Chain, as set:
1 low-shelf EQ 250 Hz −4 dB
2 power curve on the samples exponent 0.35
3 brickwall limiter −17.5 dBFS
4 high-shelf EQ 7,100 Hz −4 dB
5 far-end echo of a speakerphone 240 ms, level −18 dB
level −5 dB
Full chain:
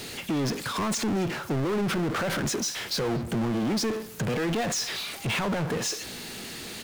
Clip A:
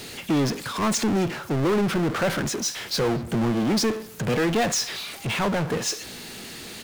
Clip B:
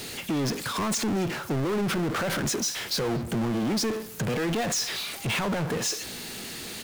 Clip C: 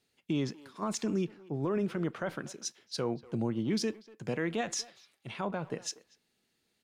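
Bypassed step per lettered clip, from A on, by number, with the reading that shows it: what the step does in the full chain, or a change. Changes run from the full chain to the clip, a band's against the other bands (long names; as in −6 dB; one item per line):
3, average gain reduction 2.0 dB
4, 8 kHz band +2.0 dB
2, change in crest factor +6.5 dB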